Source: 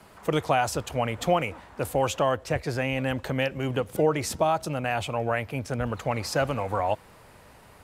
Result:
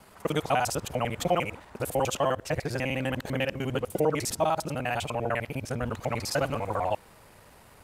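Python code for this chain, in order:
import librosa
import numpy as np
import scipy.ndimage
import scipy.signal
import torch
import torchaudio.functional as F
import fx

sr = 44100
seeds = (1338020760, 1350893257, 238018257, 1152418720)

y = fx.local_reverse(x, sr, ms=50.0)
y = fx.high_shelf(y, sr, hz=6100.0, db=5.0)
y = y * librosa.db_to_amplitude(-2.0)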